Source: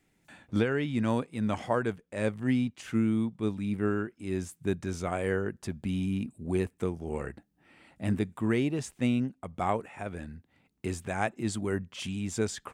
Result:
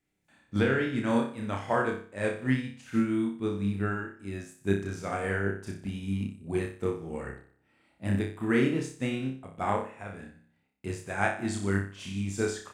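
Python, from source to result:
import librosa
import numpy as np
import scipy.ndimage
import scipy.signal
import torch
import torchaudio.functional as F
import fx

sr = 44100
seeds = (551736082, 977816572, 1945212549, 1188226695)

y = fx.dynamic_eq(x, sr, hz=1600.0, q=2.1, threshold_db=-49.0, ratio=4.0, max_db=5)
y = fx.room_flutter(y, sr, wall_m=5.2, rt60_s=0.61)
y = fx.upward_expand(y, sr, threshold_db=-45.0, expansion=1.5)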